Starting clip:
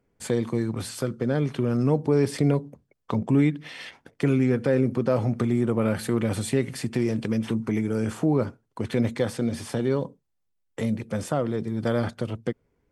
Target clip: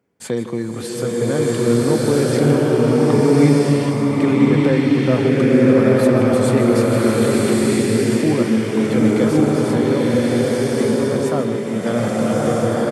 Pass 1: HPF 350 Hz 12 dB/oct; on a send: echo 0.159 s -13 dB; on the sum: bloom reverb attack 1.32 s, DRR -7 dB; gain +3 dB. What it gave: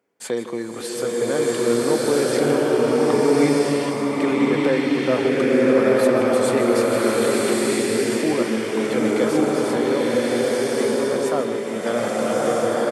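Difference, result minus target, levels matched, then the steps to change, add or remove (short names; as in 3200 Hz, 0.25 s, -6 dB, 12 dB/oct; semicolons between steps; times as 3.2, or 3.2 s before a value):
125 Hz band -10.0 dB
change: HPF 130 Hz 12 dB/oct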